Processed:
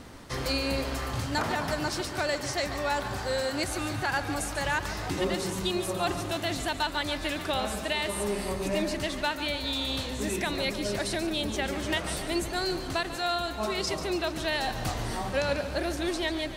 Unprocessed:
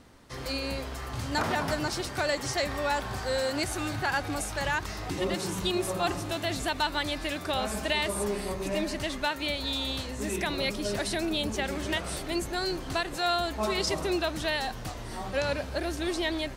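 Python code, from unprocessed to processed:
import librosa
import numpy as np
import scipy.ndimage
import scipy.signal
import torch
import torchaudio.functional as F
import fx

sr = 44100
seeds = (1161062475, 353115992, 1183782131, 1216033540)

p1 = fx.rider(x, sr, range_db=10, speed_s=0.5)
y = p1 + fx.echo_feedback(p1, sr, ms=143, feedback_pct=59, wet_db=-12.0, dry=0)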